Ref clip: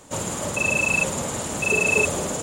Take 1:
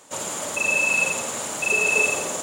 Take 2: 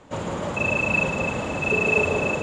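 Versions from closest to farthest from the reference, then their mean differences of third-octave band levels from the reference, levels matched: 1, 2; 4.0, 6.0 decibels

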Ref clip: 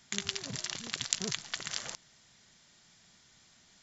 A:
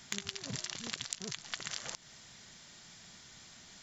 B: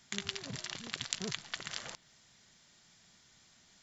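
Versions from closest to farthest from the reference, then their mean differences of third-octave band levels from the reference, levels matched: B, A; 2.0, 7.0 decibels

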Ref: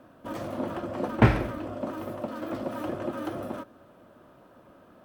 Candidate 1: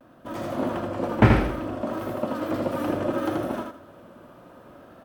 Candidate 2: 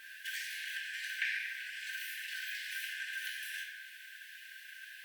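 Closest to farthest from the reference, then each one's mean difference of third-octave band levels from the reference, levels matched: 1, 2; 2.5, 29.0 decibels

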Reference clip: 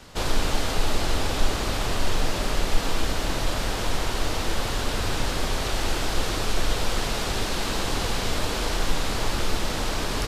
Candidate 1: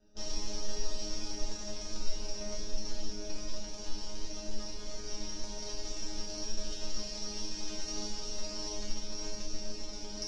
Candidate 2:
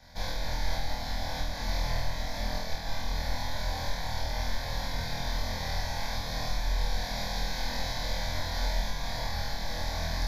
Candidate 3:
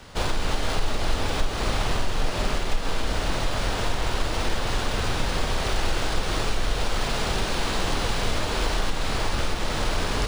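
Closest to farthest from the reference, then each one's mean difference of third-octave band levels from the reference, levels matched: 3, 2, 1; 2.0, 4.5, 10.0 decibels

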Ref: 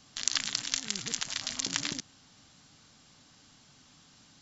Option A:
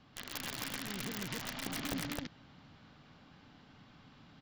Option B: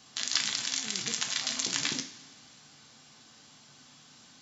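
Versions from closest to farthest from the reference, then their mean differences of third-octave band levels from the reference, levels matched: B, A; 2.5, 10.5 decibels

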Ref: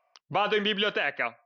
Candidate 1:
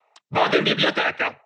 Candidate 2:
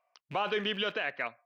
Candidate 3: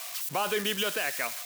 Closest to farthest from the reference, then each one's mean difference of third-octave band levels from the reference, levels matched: 2, 1, 3; 1.0, 6.0, 11.5 decibels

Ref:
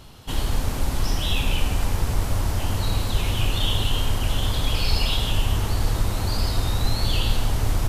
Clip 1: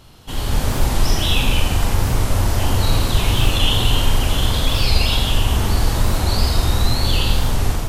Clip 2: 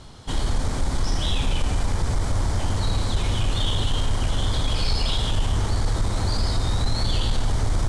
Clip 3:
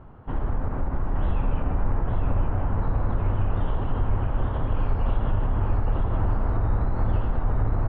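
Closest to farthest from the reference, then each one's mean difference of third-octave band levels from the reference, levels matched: 1, 2, 3; 1.5, 3.0, 12.5 decibels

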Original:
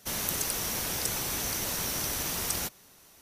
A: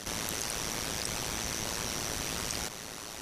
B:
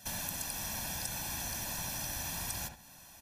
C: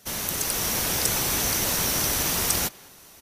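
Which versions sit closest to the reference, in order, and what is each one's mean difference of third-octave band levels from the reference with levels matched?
C, B, A; 1.5, 3.5, 6.0 decibels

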